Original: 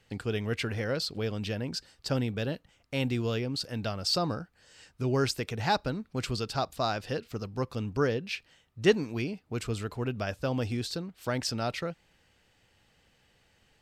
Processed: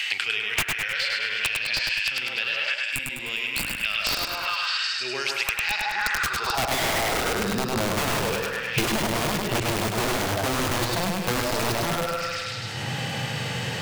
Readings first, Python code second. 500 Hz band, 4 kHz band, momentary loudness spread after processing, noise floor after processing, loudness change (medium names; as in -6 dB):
+2.0 dB, +10.0 dB, 5 LU, -32 dBFS, +7.0 dB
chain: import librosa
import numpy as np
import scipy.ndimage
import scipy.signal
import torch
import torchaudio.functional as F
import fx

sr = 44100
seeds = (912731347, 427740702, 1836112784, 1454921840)

p1 = scipy.signal.sosfilt(scipy.signal.butter(4, 91.0, 'highpass', fs=sr, output='sos'), x)
p2 = fx.high_shelf(p1, sr, hz=5300.0, db=-5.5)
p3 = p2 + fx.echo_stepped(p2, sr, ms=155, hz=770.0, octaves=0.7, feedback_pct=70, wet_db=0, dry=0)
p4 = fx.dynamic_eq(p3, sr, hz=370.0, q=5.5, threshold_db=-49.0, ratio=4.0, max_db=8)
p5 = fx.hpss(p4, sr, part='percussive', gain_db=-13)
p6 = fx.over_compress(p5, sr, threshold_db=-42.0, ratio=-1.0)
p7 = p5 + F.gain(torch.from_numpy(p6), -1.0).numpy()
p8 = fx.filter_sweep_highpass(p7, sr, from_hz=2500.0, to_hz=120.0, start_s=5.73, end_s=8.02, q=2.8)
p9 = (np.mod(10.0 ** (24.0 / 20.0) * p8 + 1.0, 2.0) - 1.0) / 10.0 ** (24.0 / 20.0)
p10 = fx.spec_box(p9, sr, start_s=2.75, length_s=1.09, low_hz=320.0, high_hz=6900.0, gain_db=-11)
p11 = fx.echo_feedback(p10, sr, ms=102, feedback_pct=41, wet_db=-3.0)
p12 = fx.band_squash(p11, sr, depth_pct=100)
y = F.gain(torch.from_numpy(p12), 3.0).numpy()